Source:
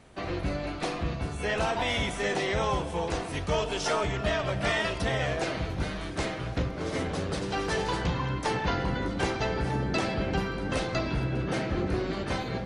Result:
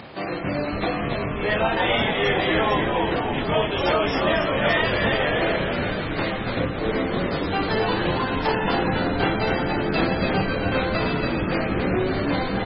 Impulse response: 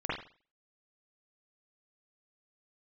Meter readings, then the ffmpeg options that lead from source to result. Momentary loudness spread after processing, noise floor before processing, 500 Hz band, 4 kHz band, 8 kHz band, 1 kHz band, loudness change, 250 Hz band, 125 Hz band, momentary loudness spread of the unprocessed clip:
5 LU, -36 dBFS, +7.5 dB, +7.0 dB, under -25 dB, +7.5 dB, +7.0 dB, +8.0 dB, +3.5 dB, 5 LU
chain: -filter_complex "[0:a]acompressor=mode=upward:threshold=0.0178:ratio=2.5,highpass=140,lowpass=5700,asplit=2[s0][s1];[s1]adelay=27,volume=0.708[s2];[s0][s2]amix=inputs=2:normalize=0,asplit=9[s3][s4][s5][s6][s7][s8][s9][s10][s11];[s4]adelay=281,afreqshift=-87,volume=0.668[s12];[s5]adelay=562,afreqshift=-174,volume=0.367[s13];[s6]adelay=843,afreqshift=-261,volume=0.202[s14];[s7]adelay=1124,afreqshift=-348,volume=0.111[s15];[s8]adelay=1405,afreqshift=-435,volume=0.061[s16];[s9]adelay=1686,afreqshift=-522,volume=0.0335[s17];[s10]adelay=1967,afreqshift=-609,volume=0.0184[s18];[s11]adelay=2248,afreqshift=-696,volume=0.0102[s19];[s3][s12][s13][s14][s15][s16][s17][s18][s19]amix=inputs=9:normalize=0,volume=1.68" -ar 24000 -c:a libmp3lame -b:a 16k

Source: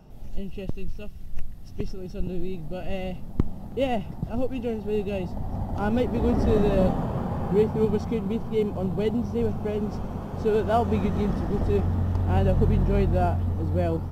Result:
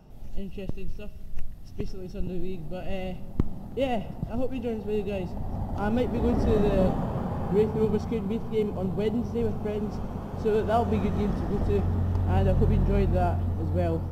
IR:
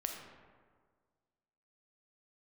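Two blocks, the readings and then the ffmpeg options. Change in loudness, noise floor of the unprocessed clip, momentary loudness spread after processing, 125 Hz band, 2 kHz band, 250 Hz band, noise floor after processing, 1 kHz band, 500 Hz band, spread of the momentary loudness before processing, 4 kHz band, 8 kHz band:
-1.5 dB, -37 dBFS, 13 LU, -1.5 dB, -2.0 dB, -2.0 dB, -38 dBFS, -1.5 dB, -2.0 dB, 13 LU, -2.0 dB, no reading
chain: -filter_complex "[0:a]asplit=2[s0][s1];[1:a]atrim=start_sample=2205[s2];[s1][s2]afir=irnorm=-1:irlink=0,volume=0.251[s3];[s0][s3]amix=inputs=2:normalize=0,volume=0.668"

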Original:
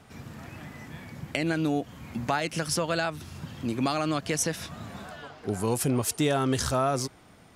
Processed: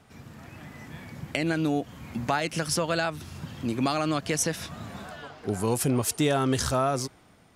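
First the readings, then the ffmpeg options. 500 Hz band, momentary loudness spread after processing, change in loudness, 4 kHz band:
+1.0 dB, 17 LU, +1.0 dB, +1.0 dB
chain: -af "dynaudnorm=f=200:g=7:m=1.68,volume=0.668"

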